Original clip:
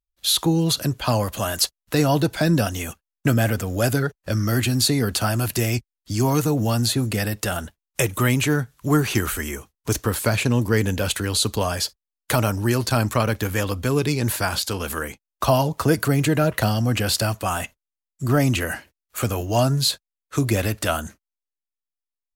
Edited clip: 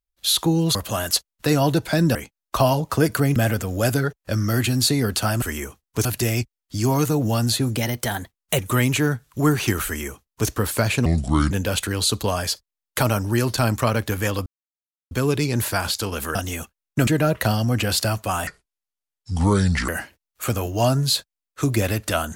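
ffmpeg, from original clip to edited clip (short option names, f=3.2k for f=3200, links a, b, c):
-filter_complex "[0:a]asplit=15[a][b][c][d][e][f][g][h][i][j][k][l][m][n][o];[a]atrim=end=0.752[p];[b]atrim=start=1.228:end=2.632[q];[c]atrim=start=15.028:end=16.242[r];[d]atrim=start=3.348:end=5.412[s];[e]atrim=start=9.328:end=9.962[t];[f]atrim=start=5.408:end=7.124[u];[g]atrim=start=7.12:end=8.06,asetpts=PTS-STARTPTS,asetrate=50274,aresample=44100,atrim=end_sample=36363,asetpts=PTS-STARTPTS[v];[h]atrim=start=8.056:end=10.534[w];[i]atrim=start=10.53:end=10.84,asetpts=PTS-STARTPTS,asetrate=29988,aresample=44100,atrim=end_sample=20104,asetpts=PTS-STARTPTS[x];[j]atrim=start=10.836:end=13.79,asetpts=PTS-STARTPTS,afade=t=out:st=2.95:d=0.004:c=hsin,apad=pad_dur=0.65[y];[k]atrim=start=13.79:end=15.032,asetpts=PTS-STARTPTS,afade=t=in:d=0.004:c=hsin[z];[l]atrim=start=2.628:end=3.352[aa];[m]atrim=start=16.238:end=17.644[ab];[n]atrim=start=17.64:end=18.63,asetpts=PTS-STARTPTS,asetrate=30870,aresample=44100,atrim=end_sample=62370,asetpts=PTS-STARTPTS[ac];[o]atrim=start=18.626[ad];[p][q]acrossfade=d=0.004:c1=hsin:c2=hsin[ae];[ae][r]acrossfade=d=0.004:c1=hsin:c2=hsin[af];[af][s]acrossfade=d=0.004:c1=hsin:c2=hsin[ag];[ag][t]acrossfade=d=0.004:c1=hsin:c2=hsin[ah];[ah][u]acrossfade=d=0.004:c1=hsin:c2=hsin[ai];[ai][v]acrossfade=d=0.004:c1=hsin:c2=hsin[aj];[aj][w]acrossfade=d=0.004:c1=hsin:c2=hsin[ak];[ak][x]acrossfade=d=0.004:c1=hsin:c2=hsin[al];[y][z]concat=n=2:v=0:a=1[am];[al][am]acrossfade=d=0.004:c1=hsin:c2=hsin[an];[an][aa]acrossfade=d=0.004:c1=hsin:c2=hsin[ao];[ao][ab]acrossfade=d=0.004:c1=hsin:c2=hsin[ap];[ap][ac]acrossfade=d=0.004:c1=hsin:c2=hsin[aq];[aq][ad]acrossfade=d=0.004:c1=hsin:c2=hsin"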